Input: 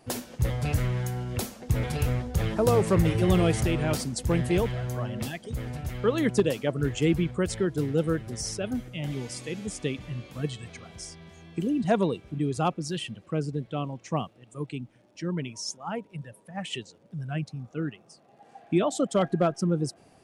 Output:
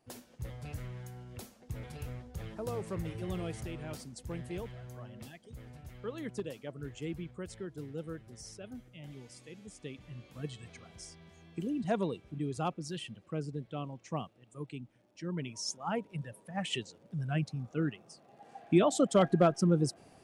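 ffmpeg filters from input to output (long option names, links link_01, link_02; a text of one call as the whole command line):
ffmpeg -i in.wav -af "volume=-1dB,afade=type=in:start_time=9.76:duration=0.91:silence=0.421697,afade=type=in:start_time=15.23:duration=0.68:silence=0.446684" out.wav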